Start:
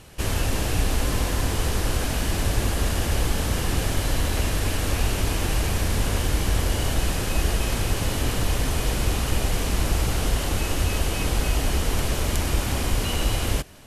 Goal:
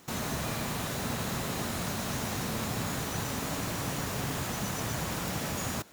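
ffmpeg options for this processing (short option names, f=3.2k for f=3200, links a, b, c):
-af "highpass=f=100:p=1,asetrate=103194,aresample=44100,volume=-6.5dB"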